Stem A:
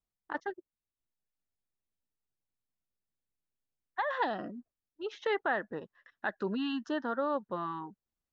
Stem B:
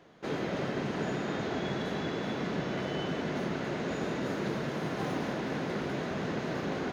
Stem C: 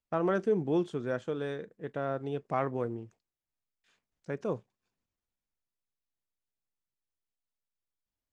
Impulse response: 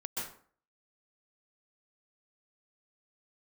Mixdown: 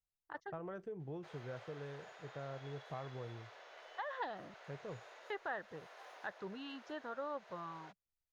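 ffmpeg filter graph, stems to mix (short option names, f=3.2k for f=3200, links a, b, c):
-filter_complex "[0:a]volume=-4dB,asplit=3[a][b][c];[a]atrim=end=4.54,asetpts=PTS-STARTPTS,afade=t=out:st=4.536:d=0.004:c=hsin[d];[b]atrim=start=4.54:end=5.3,asetpts=PTS-STARTPTS,volume=0[e];[c]atrim=start=5.3,asetpts=PTS-STARTPTS,afade=t=in:d=0.004:c=hsin[f];[d][e][f]concat=n=3:v=0:a=1,asplit=2[g][h];[1:a]highpass=f=590:w=0.5412,highpass=f=590:w=1.3066,adelay=1000,volume=-11dB[i];[2:a]highshelf=f=4.2k:g=-11.5,acompressor=threshold=-29dB:ratio=6,adelay=400,volume=-5.5dB[j];[h]apad=whole_len=349630[k];[i][k]sidechaincompress=threshold=-38dB:ratio=8:attack=47:release=442[l];[g][l][j]amix=inputs=3:normalize=0,firequalizer=gain_entry='entry(140,0);entry(220,-13);entry(460,-6)':delay=0.05:min_phase=1"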